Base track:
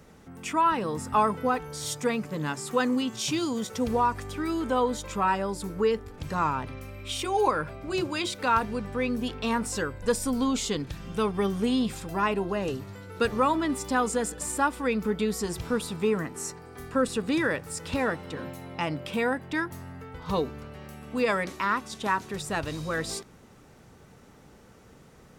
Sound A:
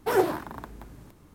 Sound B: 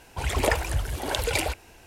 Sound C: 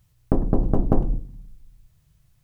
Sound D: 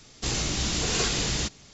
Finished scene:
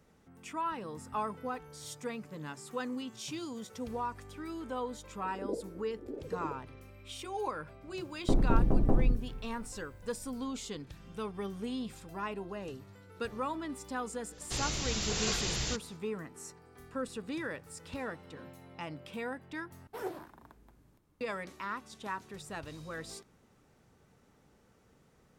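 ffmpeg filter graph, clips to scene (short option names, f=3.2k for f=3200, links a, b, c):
-filter_complex "[0:a]volume=-12dB[a];[2:a]asuperpass=centerf=320:order=8:qfactor=1.1[b];[3:a]alimiter=limit=-12dB:level=0:latency=1:release=34[c];[4:a]equalizer=f=270:t=o:w=0.77:g=-5.5[d];[a]asplit=2[e][f];[e]atrim=end=19.874[g];[1:a]atrim=end=1.34,asetpts=PTS-STARTPTS,volume=-16.5dB[h];[f]atrim=start=21.206[i];[b]atrim=end=1.86,asetpts=PTS-STARTPTS,volume=-6dB,afade=t=in:d=0.004:c=hsin,afade=t=out:st=1.856:d=0.004:c=hsin,adelay=222705S[j];[c]atrim=end=2.43,asetpts=PTS-STARTPTS,volume=-2.5dB,afade=t=in:d=0.004:c=hsin,afade=t=out:st=2.426:d=0.004:c=hsin,adelay=7970[k];[d]atrim=end=1.73,asetpts=PTS-STARTPTS,volume=-6.5dB,afade=t=in:d=0.1,afade=t=out:st=1.63:d=0.1,adelay=629748S[l];[g][h]acrossfade=d=0.004:c1=hsin:c2=hsin[m];[m][i]acrossfade=d=0.004:c1=hsin:c2=hsin[n];[n][j][k][l]amix=inputs=4:normalize=0"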